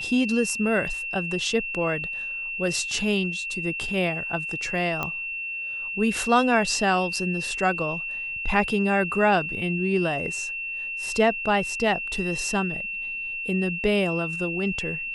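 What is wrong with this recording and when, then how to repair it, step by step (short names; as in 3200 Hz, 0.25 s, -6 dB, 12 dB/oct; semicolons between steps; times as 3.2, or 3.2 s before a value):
tone 2700 Hz -29 dBFS
5.03 pop -13 dBFS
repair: de-click; notch 2700 Hz, Q 30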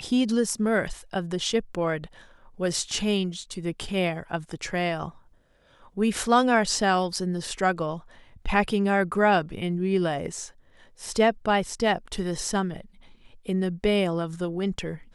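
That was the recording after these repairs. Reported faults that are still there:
none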